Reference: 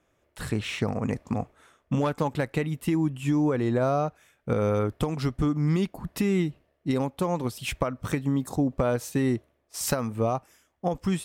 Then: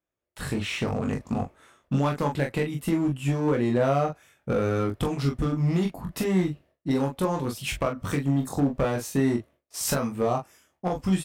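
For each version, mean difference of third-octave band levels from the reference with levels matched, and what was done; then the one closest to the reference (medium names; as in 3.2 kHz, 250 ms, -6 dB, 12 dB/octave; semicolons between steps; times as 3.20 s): 3.5 dB: gate with hold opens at -58 dBFS; one-sided clip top -22 dBFS, bottom -18 dBFS; early reflections 22 ms -4.5 dB, 42 ms -6.5 dB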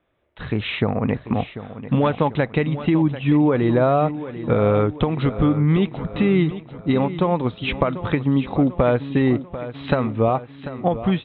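7.0 dB: Chebyshev low-pass 3.9 kHz, order 8; level rider gain up to 7.5 dB; feedback delay 742 ms, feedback 50%, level -13 dB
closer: first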